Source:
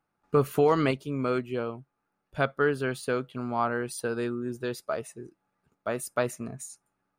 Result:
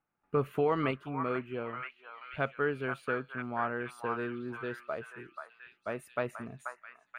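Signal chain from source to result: resonant high shelf 3.7 kHz -11.5 dB, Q 1.5; on a send: repeats whose band climbs or falls 484 ms, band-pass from 1.2 kHz, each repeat 0.7 oct, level -2 dB; on the sum: trim -6.5 dB

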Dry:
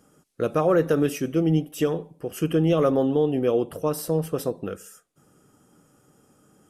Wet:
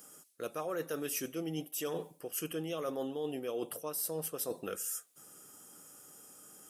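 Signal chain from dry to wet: RIAA curve recording; reverse; compression 6:1, threshold -35 dBFS, peak gain reduction 16 dB; reverse

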